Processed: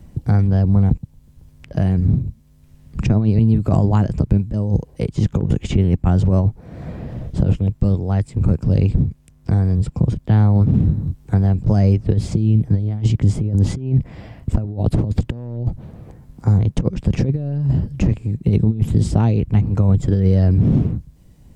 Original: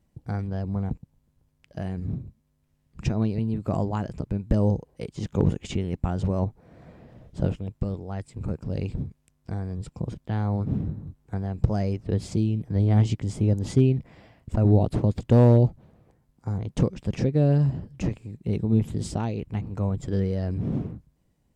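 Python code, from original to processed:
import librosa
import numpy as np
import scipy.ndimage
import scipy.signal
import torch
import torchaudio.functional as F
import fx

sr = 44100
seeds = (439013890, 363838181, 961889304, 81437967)

y = fx.over_compress(x, sr, threshold_db=-25.0, ratio=-0.5)
y = fx.low_shelf(y, sr, hz=220.0, db=10.0)
y = fx.band_squash(y, sr, depth_pct=40)
y = F.gain(torch.from_numpy(y), 4.0).numpy()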